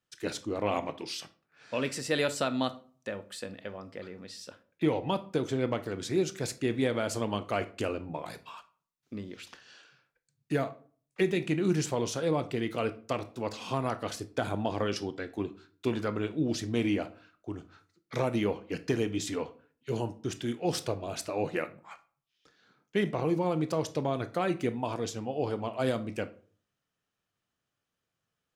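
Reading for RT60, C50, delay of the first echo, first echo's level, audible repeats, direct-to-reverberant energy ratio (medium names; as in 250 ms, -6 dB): 0.45 s, 16.5 dB, no echo, no echo, no echo, 11.0 dB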